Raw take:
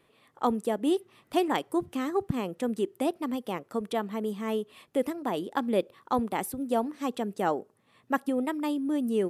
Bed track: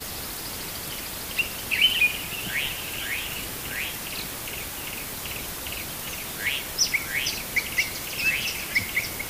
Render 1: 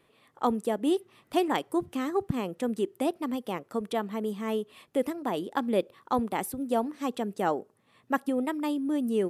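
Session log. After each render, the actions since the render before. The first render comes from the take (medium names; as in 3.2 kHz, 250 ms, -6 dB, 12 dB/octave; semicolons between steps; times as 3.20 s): no audible change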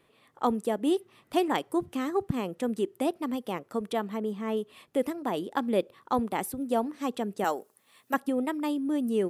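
4.17–4.57 s: treble shelf 3.7 kHz -8.5 dB; 7.44–8.14 s: RIAA curve recording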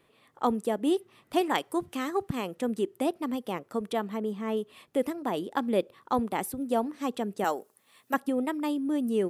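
1.41–2.57 s: tilt shelf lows -3.5 dB, about 660 Hz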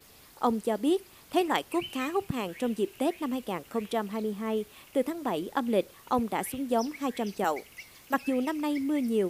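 add bed track -21.5 dB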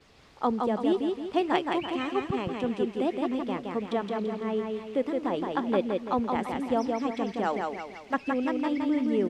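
distance through air 130 m; feedback delay 168 ms, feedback 43%, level -3.5 dB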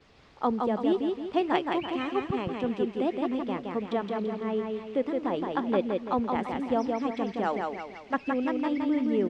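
distance through air 74 m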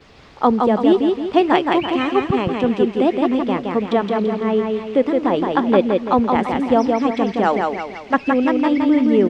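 trim +11.5 dB; peak limiter -1 dBFS, peak gain reduction 2.5 dB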